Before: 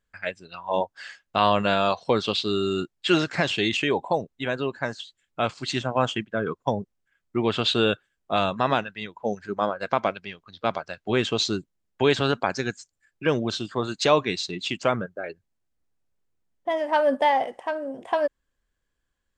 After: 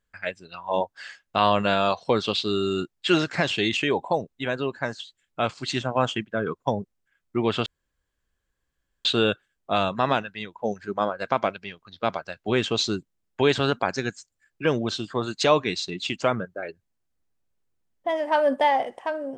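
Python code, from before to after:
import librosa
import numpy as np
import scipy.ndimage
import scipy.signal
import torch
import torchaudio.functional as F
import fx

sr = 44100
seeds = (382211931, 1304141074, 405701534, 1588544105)

y = fx.edit(x, sr, fx.insert_room_tone(at_s=7.66, length_s=1.39), tone=tone)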